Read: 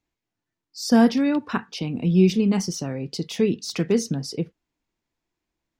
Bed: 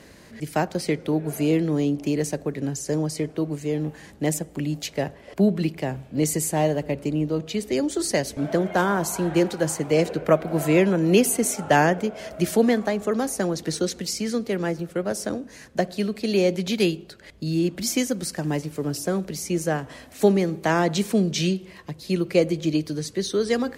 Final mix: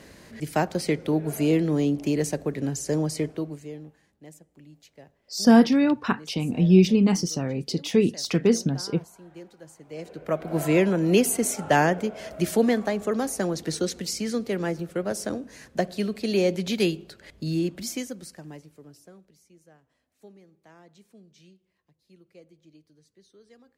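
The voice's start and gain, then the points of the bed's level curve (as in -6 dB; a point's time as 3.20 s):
4.55 s, +1.0 dB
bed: 3.25 s -0.5 dB
4.13 s -23.5 dB
9.76 s -23.5 dB
10.56 s -2 dB
17.53 s -2 dB
19.56 s -32 dB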